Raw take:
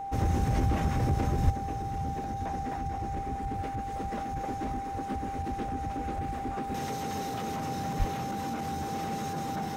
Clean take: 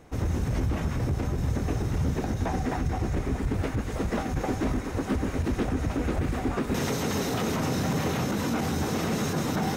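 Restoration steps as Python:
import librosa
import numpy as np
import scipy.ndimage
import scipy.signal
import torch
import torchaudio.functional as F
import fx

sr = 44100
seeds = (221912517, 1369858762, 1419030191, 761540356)

y = fx.fix_declick_ar(x, sr, threshold=6.5)
y = fx.notch(y, sr, hz=790.0, q=30.0)
y = fx.fix_deplosive(y, sr, at_s=(1.44, 7.98))
y = fx.gain(y, sr, db=fx.steps((0.0, 0.0), (1.5, 8.5)))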